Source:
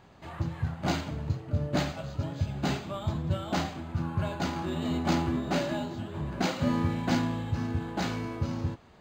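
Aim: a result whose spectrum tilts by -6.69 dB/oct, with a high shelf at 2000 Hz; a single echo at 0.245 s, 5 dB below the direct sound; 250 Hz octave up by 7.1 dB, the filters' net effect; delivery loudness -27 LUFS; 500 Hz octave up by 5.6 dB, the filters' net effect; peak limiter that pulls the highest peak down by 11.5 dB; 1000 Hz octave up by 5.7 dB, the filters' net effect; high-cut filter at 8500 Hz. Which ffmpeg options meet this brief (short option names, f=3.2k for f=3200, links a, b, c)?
-af "lowpass=8.5k,equalizer=f=250:t=o:g=7.5,equalizer=f=500:t=o:g=3.5,equalizer=f=1k:t=o:g=7,highshelf=f=2k:g=-6,alimiter=limit=-20.5dB:level=0:latency=1,aecho=1:1:245:0.562,volume=2dB"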